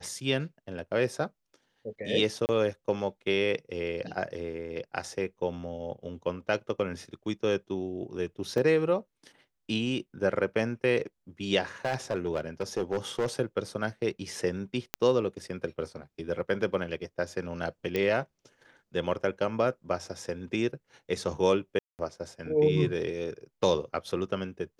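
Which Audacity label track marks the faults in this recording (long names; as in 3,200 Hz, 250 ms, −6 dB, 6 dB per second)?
2.460000	2.490000	drop-out 29 ms
8.580000	8.580000	drop-out 2.2 ms
11.850000	13.260000	clipping −23.5 dBFS
14.940000	14.940000	click −10 dBFS
17.960000	17.960000	click −16 dBFS
21.790000	21.990000	drop-out 199 ms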